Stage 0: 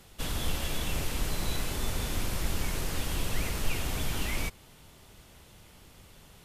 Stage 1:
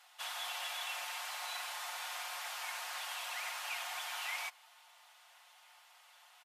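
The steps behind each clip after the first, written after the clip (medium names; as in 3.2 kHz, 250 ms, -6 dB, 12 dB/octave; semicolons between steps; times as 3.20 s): steep high-pass 700 Hz 48 dB/octave; treble shelf 5.1 kHz -9 dB; comb 5.6 ms, depth 51%; trim -1.5 dB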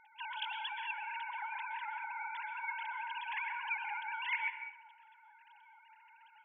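formants replaced by sine waves; plate-style reverb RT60 0.76 s, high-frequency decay 0.75×, pre-delay 110 ms, DRR 8 dB; trim +1 dB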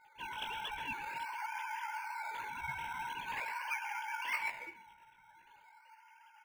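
chorus 1.3 Hz, delay 15.5 ms, depth 4.2 ms; in parallel at -9 dB: decimation with a swept rate 15×, swing 60% 0.44 Hz; on the sum: trim +1.5 dB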